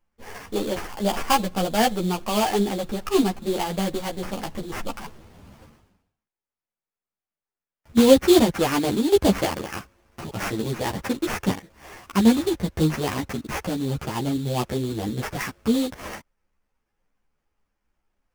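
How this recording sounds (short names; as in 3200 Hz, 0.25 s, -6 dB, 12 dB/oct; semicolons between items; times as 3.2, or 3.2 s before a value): aliases and images of a low sample rate 3900 Hz, jitter 20%; a shimmering, thickened sound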